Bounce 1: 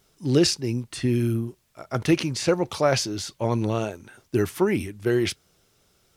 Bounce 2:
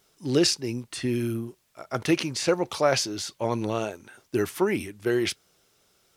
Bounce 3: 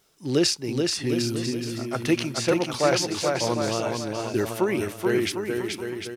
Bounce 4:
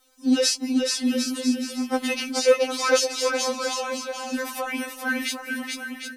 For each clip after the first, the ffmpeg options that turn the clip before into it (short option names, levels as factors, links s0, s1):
-af "lowshelf=f=180:g=-10.5"
-af "aecho=1:1:430|752.5|994.4|1176|1312:0.631|0.398|0.251|0.158|0.1"
-af "afftfilt=real='re*3.46*eq(mod(b,12),0)':imag='im*3.46*eq(mod(b,12),0)':win_size=2048:overlap=0.75,volume=1.78"